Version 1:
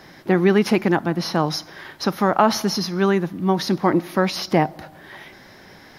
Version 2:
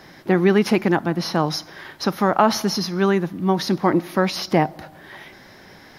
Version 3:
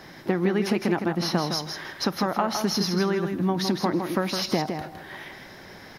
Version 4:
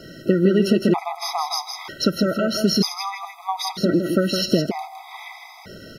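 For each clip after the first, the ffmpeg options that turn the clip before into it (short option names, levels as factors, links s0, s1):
-af anull
-af "acompressor=threshold=0.1:ratio=10,aecho=1:1:161|322|483:0.473|0.0757|0.0121"
-af "asuperstop=centerf=1700:order=20:qfactor=5.4,afftfilt=real='re*gt(sin(2*PI*0.53*pts/sr)*(1-2*mod(floor(b*sr/1024/650),2)),0)':imag='im*gt(sin(2*PI*0.53*pts/sr)*(1-2*mod(floor(b*sr/1024/650),2)),0)':win_size=1024:overlap=0.75,volume=2.24"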